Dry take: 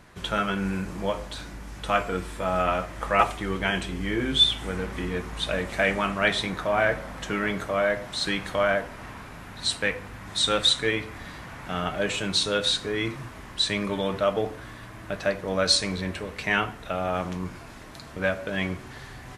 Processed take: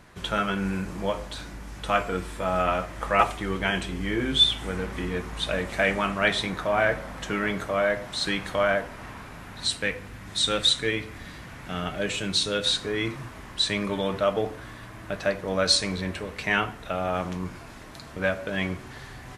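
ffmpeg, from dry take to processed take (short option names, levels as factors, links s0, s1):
-filter_complex "[0:a]asettb=1/sr,asplit=3[s0][s1][s2];[s0]atrim=end=9.674[s3];[s1]atrim=start=9.67:end=12.66,asetpts=PTS-STARTPTS,afade=t=in:d=0.004:c=qsin,afade=t=out:st=2.986:d=0.004:c=qsin,equalizer=f=930:t=o:w=1.5:g=-5[s4];[s2]atrim=start=12.656[s5];[s3][s4]acrossfade=d=0.004:c1=hsin:c2=qsin[s6];[s6][s5]acrossfade=d=0.004:c1=qsin:c2=hsin"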